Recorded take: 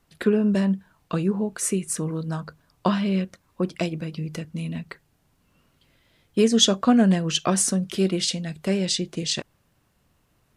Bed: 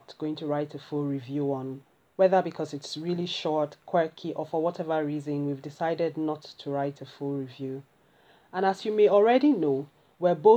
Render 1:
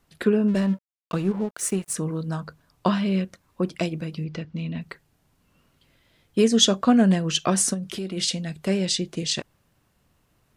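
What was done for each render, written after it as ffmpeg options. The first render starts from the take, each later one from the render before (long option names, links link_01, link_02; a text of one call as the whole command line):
ffmpeg -i in.wav -filter_complex "[0:a]asplit=3[link_01][link_02][link_03];[link_01]afade=type=out:start_time=0.47:duration=0.02[link_04];[link_02]aeval=exprs='sgn(val(0))*max(abs(val(0))-0.01,0)':channel_layout=same,afade=type=in:start_time=0.47:duration=0.02,afade=type=out:start_time=1.93:duration=0.02[link_05];[link_03]afade=type=in:start_time=1.93:duration=0.02[link_06];[link_04][link_05][link_06]amix=inputs=3:normalize=0,asettb=1/sr,asplit=3[link_07][link_08][link_09];[link_07]atrim=end=4.244[link_10];[link_08]atrim=start=4.24:end=4.81,asetpts=PTS-STARTPTS,afade=type=in:duration=0.004:curve=qsin,afade=type=out:start_time=0.566:duration=0.004:curve=qsin,lowpass=frequency=5000:width=0.5412,lowpass=frequency=5000:width=1.3066[link_11];[link_09]atrim=start=4.806[link_12];[link_10][link_11]acrossfade=duration=0.004:curve1=hsin:curve2=qsin[link_13];[link_13][link_12]acrossfade=duration=0.004:curve1=qsin:curve2=hsin,asplit=3[link_14][link_15][link_16];[link_14]afade=type=out:start_time=7.73:duration=0.02[link_17];[link_15]acompressor=threshold=-28dB:ratio=4:attack=3.2:release=140:knee=1:detection=peak,afade=type=in:start_time=7.73:duration=0.02,afade=type=out:start_time=8.16:duration=0.02[link_18];[link_16]afade=type=in:start_time=8.16:duration=0.02[link_19];[link_17][link_18][link_19]amix=inputs=3:normalize=0" out.wav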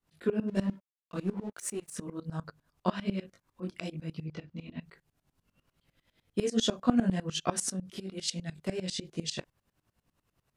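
ffmpeg -i in.wav -af "flanger=delay=18:depth=4.3:speed=1.2,aeval=exprs='val(0)*pow(10,-20*if(lt(mod(-10*n/s,1),2*abs(-10)/1000),1-mod(-10*n/s,1)/(2*abs(-10)/1000),(mod(-10*n/s,1)-2*abs(-10)/1000)/(1-2*abs(-10)/1000))/20)':channel_layout=same" out.wav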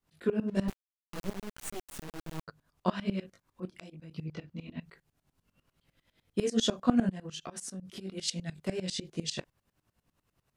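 ffmpeg -i in.wav -filter_complex "[0:a]asettb=1/sr,asplit=3[link_01][link_02][link_03];[link_01]atrim=end=0.684[link_04];[link_02]atrim=start=0.68:end=2.48,asetpts=PTS-STARTPTS,afade=type=in:duration=0.004:curve=qsin,afade=type=out:start_time=1.796:duration=0.004:curve=qsin,acrusher=bits=4:dc=4:mix=0:aa=0.000001[link_05];[link_03]atrim=start=2.476[link_06];[link_04][link_05]acrossfade=duration=0.004:curve1=hsin:curve2=qsin[link_07];[link_07][link_06]acrossfade=duration=0.004:curve1=qsin:curve2=hsin,asettb=1/sr,asplit=3[link_08][link_09][link_10];[link_08]atrim=end=3.654[link_11];[link_09]atrim=start=3.65:end=4.11,asetpts=PTS-STARTPTS,afade=type=in:duration=0.004:curve=qsin,afade=type=out:start_time=0.456:duration=0.004:curve=qsin,acompressor=threshold=-45dB:ratio=6:attack=3.2:release=140:knee=1:detection=peak[link_12];[link_10]atrim=start=4.106[link_13];[link_11][link_12]acrossfade=duration=0.004:curve1=hsin:curve2=qsin[link_14];[link_14][link_13]acrossfade=duration=0.004:curve1=qsin:curve2=hsin,asettb=1/sr,asplit=3[link_15][link_16][link_17];[link_15]atrim=end=7.094[link_18];[link_16]atrim=start=7.09:end=8.01,asetpts=PTS-STARTPTS,afade=type=in:duration=0.004:curve=qsin,afade=type=out:start_time=0.916:duration=0.004:curve=qsin,acompressor=threshold=-37dB:ratio=8:attack=3.2:release=140:knee=1:detection=peak[link_19];[link_17]atrim=start=8.006[link_20];[link_18][link_19]acrossfade=duration=0.004:curve1=hsin:curve2=qsin[link_21];[link_21][link_20]acrossfade=duration=0.004:curve1=qsin:curve2=hsin" out.wav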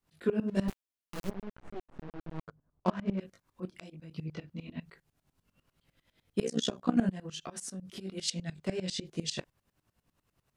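ffmpeg -i in.wav -filter_complex "[0:a]asplit=3[link_01][link_02][link_03];[link_01]afade=type=out:start_time=1.29:duration=0.02[link_04];[link_02]adynamicsmooth=sensitivity=4.5:basefreq=790,afade=type=in:start_time=1.29:duration=0.02,afade=type=out:start_time=3.19:duration=0.02[link_05];[link_03]afade=type=in:start_time=3.19:duration=0.02[link_06];[link_04][link_05][link_06]amix=inputs=3:normalize=0,asettb=1/sr,asplit=3[link_07][link_08][link_09];[link_07]atrim=end=6.404[link_10];[link_08]atrim=start=6.4:end=6.97,asetpts=PTS-STARTPTS,afade=type=in:duration=0.004:curve=qsin,afade=type=out:start_time=0.566:duration=0.004:curve=qsin,tremolo=f=63:d=0.889[link_11];[link_09]atrim=start=6.966[link_12];[link_10][link_11]acrossfade=duration=0.004:curve1=hsin:curve2=qsin[link_13];[link_13][link_12]acrossfade=duration=0.004:curve1=qsin:curve2=hsin,asettb=1/sr,asplit=3[link_14][link_15][link_16];[link_14]atrim=end=8.304[link_17];[link_15]atrim=start=8.3:end=9.06,asetpts=PTS-STARTPTS,afade=type=in:duration=0.004:curve=qsin,afade=type=out:start_time=0.756:duration=0.004:curve=qsin,equalizer=frequency=12000:width=1.5:gain=-10[link_18];[link_16]atrim=start=9.056[link_19];[link_17][link_18]acrossfade=duration=0.004:curve1=hsin:curve2=qsin[link_20];[link_20][link_19]acrossfade=duration=0.004:curve1=qsin:curve2=hsin" out.wav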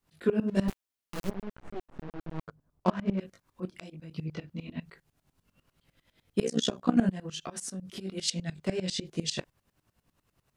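ffmpeg -i in.wav -af "volume=3dB" out.wav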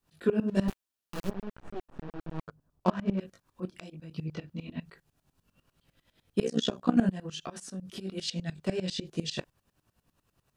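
ffmpeg -i in.wav -filter_complex "[0:a]bandreject=frequency=2100:width=11,acrossover=split=4800[link_01][link_02];[link_02]acompressor=threshold=-45dB:ratio=4:attack=1:release=60[link_03];[link_01][link_03]amix=inputs=2:normalize=0" out.wav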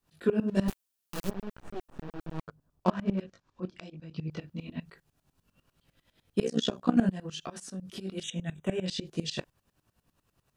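ffmpeg -i in.wav -filter_complex "[0:a]asettb=1/sr,asplit=3[link_01][link_02][link_03];[link_01]atrim=end=0.664[link_04];[link_02]atrim=start=0.66:end=2.41,asetpts=PTS-STARTPTS,afade=type=in:duration=0.004:curve=qsin,afade=type=out:start_time=1.746:duration=0.004:curve=qsin,highshelf=frequency=5200:gain=8.5[link_05];[link_03]atrim=start=2.406[link_06];[link_04][link_05]acrossfade=duration=0.004:curve1=hsin:curve2=qsin[link_07];[link_07][link_06]acrossfade=duration=0.004:curve1=qsin:curve2=hsin,asettb=1/sr,asplit=3[link_08][link_09][link_10];[link_08]atrim=end=3.214[link_11];[link_09]atrim=start=3.21:end=4.31,asetpts=PTS-STARTPTS,afade=type=in:duration=0.004:curve=qsin,afade=type=out:start_time=1.096:duration=0.004:curve=qsin,lowpass=frequency=6500:width=0.5412,lowpass=frequency=6500:width=1.3066[link_12];[link_10]atrim=start=4.306[link_13];[link_11][link_12]acrossfade=duration=0.004:curve1=hsin:curve2=qsin[link_14];[link_14][link_13]acrossfade=duration=0.004:curve1=qsin:curve2=hsin,asettb=1/sr,asplit=3[link_15][link_16][link_17];[link_15]atrim=end=8.234[link_18];[link_16]atrim=start=8.23:end=8.86,asetpts=PTS-STARTPTS,afade=type=in:duration=0.004:curve=qsin,afade=type=out:start_time=0.626:duration=0.004:curve=qsin,asuperstop=centerf=4700:order=20:qfactor=2.4[link_19];[link_17]atrim=start=8.856[link_20];[link_18][link_19]acrossfade=duration=0.004:curve1=hsin:curve2=qsin[link_21];[link_21][link_20]acrossfade=duration=0.004:curve1=qsin:curve2=hsin" out.wav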